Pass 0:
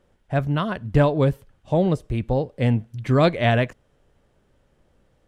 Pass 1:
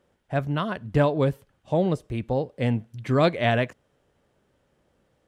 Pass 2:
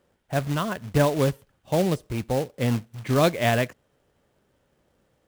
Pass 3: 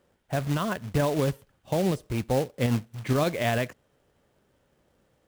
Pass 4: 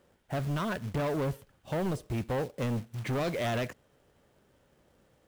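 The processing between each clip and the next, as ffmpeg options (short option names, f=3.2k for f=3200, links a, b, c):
-af "highpass=f=130:p=1,volume=-2dB"
-af "acrusher=bits=3:mode=log:mix=0:aa=0.000001"
-af "alimiter=limit=-16dB:level=0:latency=1:release=46"
-af "asoftclip=type=tanh:threshold=-29dB,volume=1.5dB"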